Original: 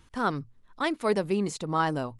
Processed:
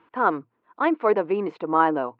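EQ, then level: cabinet simulation 260–2700 Hz, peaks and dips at 320 Hz +9 dB, 470 Hz +7 dB, 700 Hz +7 dB, 1 kHz +9 dB, 1.4 kHz +5 dB, 2.5 kHz +3 dB; 0.0 dB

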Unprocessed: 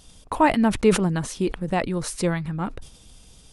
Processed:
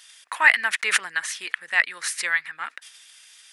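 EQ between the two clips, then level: resonant high-pass 1.8 kHz, resonance Q 4.1; +3.0 dB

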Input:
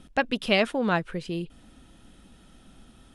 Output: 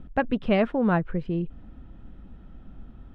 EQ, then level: low-pass 1.6 kHz 12 dB/octave; bass shelf 160 Hz +12 dB; 0.0 dB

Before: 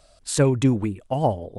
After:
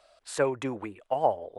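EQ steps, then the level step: dynamic bell 3.5 kHz, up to -6 dB, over -45 dBFS, Q 1.1; three-band isolator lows -21 dB, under 440 Hz, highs -12 dB, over 3.7 kHz; 0.0 dB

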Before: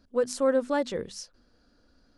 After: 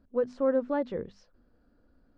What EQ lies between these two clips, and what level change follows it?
tape spacing loss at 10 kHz 42 dB; 0.0 dB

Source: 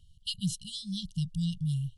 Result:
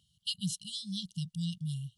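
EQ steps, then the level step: high-pass 190 Hz 12 dB/octave; 0.0 dB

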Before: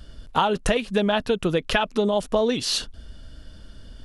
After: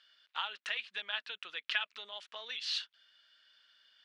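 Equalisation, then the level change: Butterworth band-pass 2.6 kHz, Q 0.95; -7.0 dB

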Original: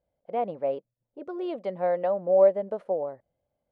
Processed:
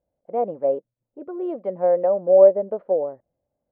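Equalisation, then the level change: low-pass 1.4 kHz 12 dB/octave; peaking EQ 300 Hz +4 dB 1.1 oct; dynamic bell 500 Hz, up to +7 dB, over -32 dBFS, Q 1.6; 0.0 dB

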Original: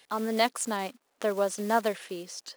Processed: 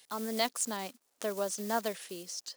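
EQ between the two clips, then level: dynamic bell 9.9 kHz, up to -6 dB, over -50 dBFS, Q 1.1; tone controls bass +2 dB, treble +12 dB; -7.0 dB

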